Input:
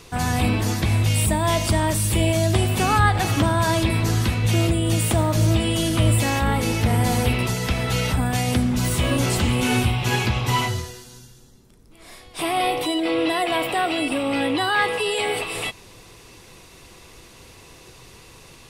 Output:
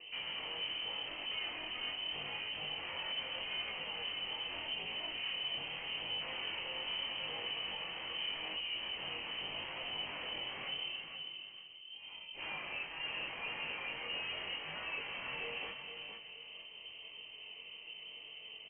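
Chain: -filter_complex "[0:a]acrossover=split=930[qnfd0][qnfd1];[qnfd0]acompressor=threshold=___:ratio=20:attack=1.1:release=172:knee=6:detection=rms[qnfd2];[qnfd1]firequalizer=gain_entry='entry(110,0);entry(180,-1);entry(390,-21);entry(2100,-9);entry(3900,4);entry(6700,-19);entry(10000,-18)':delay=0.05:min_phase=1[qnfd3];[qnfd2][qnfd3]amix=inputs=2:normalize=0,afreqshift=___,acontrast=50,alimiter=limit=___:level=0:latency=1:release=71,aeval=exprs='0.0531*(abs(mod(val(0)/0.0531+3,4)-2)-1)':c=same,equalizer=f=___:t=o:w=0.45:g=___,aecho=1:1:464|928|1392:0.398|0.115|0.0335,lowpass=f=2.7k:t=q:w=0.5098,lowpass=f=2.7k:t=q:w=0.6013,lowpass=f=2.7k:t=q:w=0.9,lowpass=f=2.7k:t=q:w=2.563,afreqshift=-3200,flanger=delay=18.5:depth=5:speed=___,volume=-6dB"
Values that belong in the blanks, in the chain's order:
-28dB, 75, -13dB, 1.7k, -7.5, 0.81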